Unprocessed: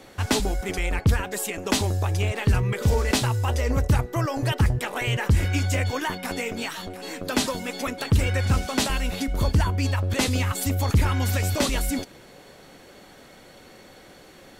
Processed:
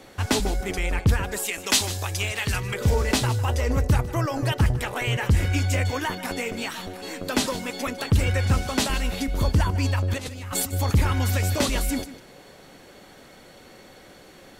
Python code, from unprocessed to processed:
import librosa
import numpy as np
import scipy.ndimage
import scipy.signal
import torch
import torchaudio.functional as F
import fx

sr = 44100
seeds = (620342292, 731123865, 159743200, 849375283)

p1 = fx.tilt_shelf(x, sr, db=-7.5, hz=1200.0, at=(1.46, 2.74))
p2 = fx.over_compress(p1, sr, threshold_db=-29.0, ratio=-0.5, at=(10.17, 10.72), fade=0.02)
y = p2 + fx.echo_single(p2, sr, ms=153, db=-15.0, dry=0)